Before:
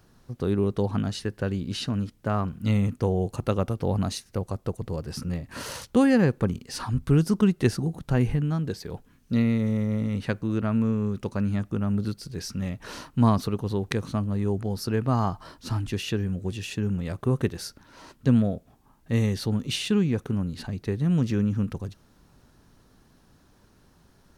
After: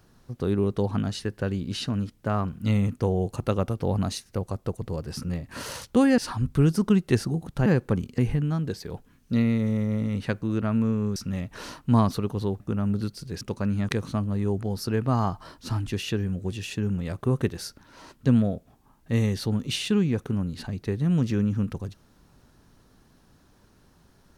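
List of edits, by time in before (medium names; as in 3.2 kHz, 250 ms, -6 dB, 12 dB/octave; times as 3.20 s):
6.18–6.70 s: move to 8.18 s
11.16–11.64 s: swap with 12.45–13.89 s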